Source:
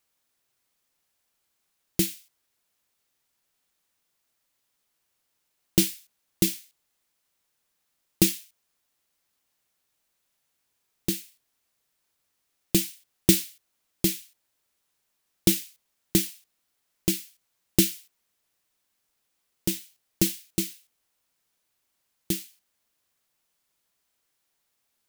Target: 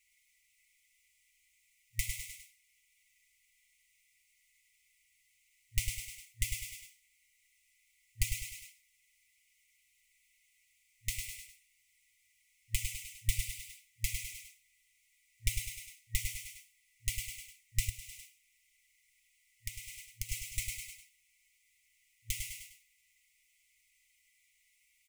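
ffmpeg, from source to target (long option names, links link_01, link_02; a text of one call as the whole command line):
ffmpeg -i in.wav -filter_complex "[0:a]equalizer=frequency=1000:width_type=o:width=1:gain=11,equalizer=frequency=2000:width_type=o:width=1:gain=9,equalizer=frequency=4000:width_type=o:width=1:gain=-7,equalizer=frequency=8000:width_type=o:width=1:gain=6,aecho=1:1:101|202|303|404:0.562|0.191|0.065|0.0221,acrossover=split=190[link_01][link_02];[link_02]acompressor=threshold=-35dB:ratio=6[link_03];[link_01][link_03]amix=inputs=2:normalize=0,highshelf=frequency=6200:gain=-8.5,aecho=1:1:6:0.77,asettb=1/sr,asplit=3[link_04][link_05][link_06];[link_04]atrim=end=17.894[link_07];[link_05]atrim=start=17.89:end=20.29,asetpts=PTS-STARTPTS,afade=type=in:duration=0.004:curve=qsin,afade=type=out:start_time=2.396:duration=0.004:curve=qsin,acompressor=threshold=-36dB:ratio=3[link_08];[link_06]atrim=start=20.286[link_09];[link_07][link_08]acrossfade=duration=0.004:curve1=hsin:curve2=qsin[link_10];[link_10][link_09]acrossfade=duration=0.004:curve1=qsin:curve2=hsin,afftfilt=real='re*(1-between(b*sr/4096,110,1900))':imag='im*(1-between(b*sr/4096,110,1900))':win_size=4096:overlap=0.75,volume=4dB" out.wav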